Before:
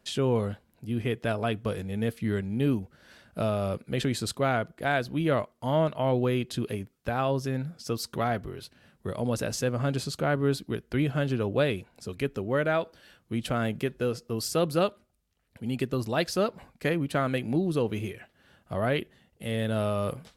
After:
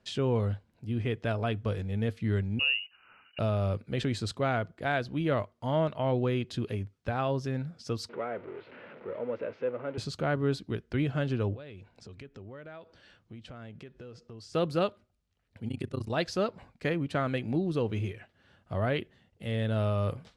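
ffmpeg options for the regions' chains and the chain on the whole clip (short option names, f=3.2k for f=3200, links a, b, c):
-filter_complex "[0:a]asettb=1/sr,asplit=3[a][b][c];[a]atrim=end=2.594[d];[b]atrim=start=2.59:end=3.39,asetpts=PTS-STARTPTS,afade=t=in:d=0.004:c=qsin,afade=t=out:st=0.796:d=0.004:c=qsin,acrusher=bits=8:mode=log:mix=0:aa=0.000001,lowpass=f=2.6k:t=q:w=0.5098,lowpass=f=2.6k:t=q:w=0.6013,lowpass=f=2.6k:t=q:w=0.9,lowpass=f=2.6k:t=q:w=2.563,afreqshift=-3000[e];[c]atrim=start=3.386[f];[d][e]acrossfade=d=0.004:c1=hsin:c2=qsin[g];[g][f]acrossfade=d=0.004:c1=qsin:c2=hsin,asettb=1/sr,asplit=3[h][i][j];[h]atrim=end=8.094[k];[i]atrim=start=8.09:end=9.98,asetpts=PTS-STARTPTS,afade=t=in:d=0.004:c=qsin,afade=t=out:st=1.886:d=0.004:c=qsin,aeval=exprs='val(0)+0.5*0.0282*sgn(val(0))':c=same,highpass=440,equalizer=f=490:t=q:w=4:g=4,equalizer=f=750:t=q:w=4:g=-10,equalizer=f=1.1k:t=q:w=4:g=-8,equalizer=f=1.7k:t=q:w=4:g=-9,lowpass=f=2k:w=0.5412,lowpass=f=2k:w=1.3066[l];[j]atrim=start=9.976[m];[k][l]acrossfade=d=0.004:c1=hsin:c2=qsin[n];[n][m]acrossfade=d=0.004:c1=qsin:c2=hsin,asettb=1/sr,asplit=3[o][p][q];[o]atrim=end=11.544[r];[p]atrim=start=11.54:end=14.54,asetpts=PTS-STARTPTS,afade=t=in:d=0.004:c=qsin,afade=t=out:st=2.996:d=0.004:c=qsin,lowpass=8.1k,acompressor=threshold=-43dB:ratio=4:attack=3.2:release=140:knee=1:detection=peak[s];[q]atrim=start=14.536[t];[r][s]acrossfade=d=0.004:c1=hsin:c2=qsin[u];[u][t]acrossfade=d=0.004:c1=qsin:c2=hsin,asettb=1/sr,asplit=3[v][w][x];[v]atrim=end=15.684[y];[w]atrim=start=15.68:end=16.1,asetpts=PTS-STARTPTS,afade=t=in:d=0.004:c=qsin,afade=t=out:st=0.416:d=0.004:c=qsin,equalizer=f=9.5k:t=o:w=0.24:g=13,tremolo=f=30:d=0.947[z];[x]atrim=start=16.096[aa];[y][z]acrossfade=d=0.004:c1=hsin:c2=qsin[ab];[ab][aa]acrossfade=d=0.004:c1=qsin:c2=hsin,lowpass=6.1k,equalizer=f=100:t=o:w=0.33:g=8,volume=-3dB"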